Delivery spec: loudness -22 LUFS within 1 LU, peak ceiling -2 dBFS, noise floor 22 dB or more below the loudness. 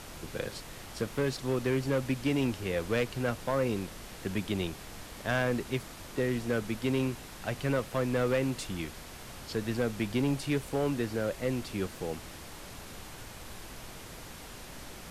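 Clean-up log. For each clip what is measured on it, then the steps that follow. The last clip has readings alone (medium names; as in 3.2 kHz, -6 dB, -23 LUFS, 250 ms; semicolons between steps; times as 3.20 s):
clipped samples 1.0%; clipping level -22.0 dBFS; noise floor -46 dBFS; noise floor target -55 dBFS; loudness -32.5 LUFS; peak level -22.0 dBFS; loudness target -22.0 LUFS
-> clip repair -22 dBFS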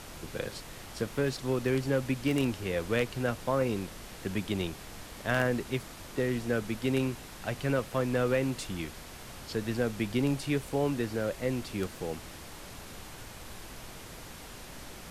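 clipped samples 0.0%; noise floor -46 dBFS; noise floor target -54 dBFS
-> noise print and reduce 8 dB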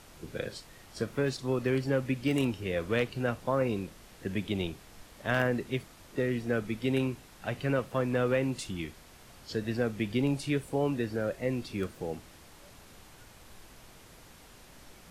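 noise floor -54 dBFS; loudness -32.0 LUFS; peak level -13.0 dBFS; loudness target -22.0 LUFS
-> trim +10 dB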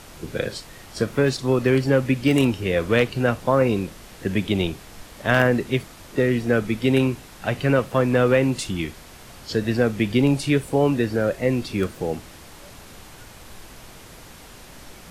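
loudness -22.0 LUFS; peak level -3.0 dBFS; noise floor -44 dBFS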